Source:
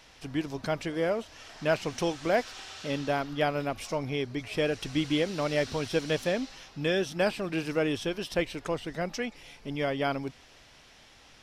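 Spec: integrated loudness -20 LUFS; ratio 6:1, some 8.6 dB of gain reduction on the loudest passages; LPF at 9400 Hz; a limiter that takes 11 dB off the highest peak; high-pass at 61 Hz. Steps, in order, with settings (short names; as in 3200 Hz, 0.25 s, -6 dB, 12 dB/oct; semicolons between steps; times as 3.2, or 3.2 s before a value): HPF 61 Hz; LPF 9400 Hz; compressor 6:1, threshold -31 dBFS; gain +21.5 dB; limiter -10 dBFS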